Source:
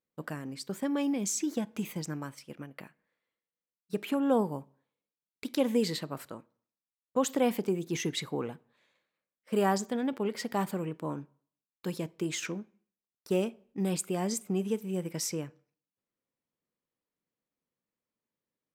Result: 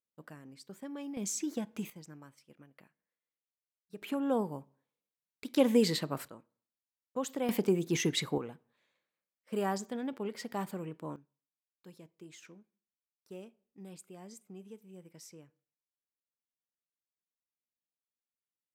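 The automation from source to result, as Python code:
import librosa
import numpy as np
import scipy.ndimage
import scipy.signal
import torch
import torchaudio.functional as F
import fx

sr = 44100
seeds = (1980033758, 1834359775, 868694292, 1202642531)

y = fx.gain(x, sr, db=fx.steps((0.0, -12.0), (1.17, -4.0), (1.9, -14.0), (4.02, -4.5), (5.56, 2.0), (6.28, -7.5), (7.49, 2.0), (8.38, -6.0), (11.16, -18.5)))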